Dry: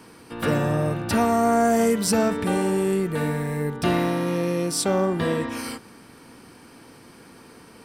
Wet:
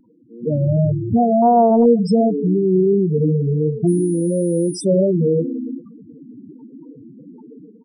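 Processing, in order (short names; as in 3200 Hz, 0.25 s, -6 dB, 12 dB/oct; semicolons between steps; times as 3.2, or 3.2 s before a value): AGC gain up to 14 dB; feedback echo 0.118 s, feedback 57%, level -19 dB; loudest bins only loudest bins 4; vibrato 2.8 Hz 58 cents; 3.87–4.83 whine 9700 Hz -36 dBFS; reverb, pre-delay 7 ms, DRR 18.5 dB; 1.42–1.86 Doppler distortion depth 0.16 ms; gain -1 dB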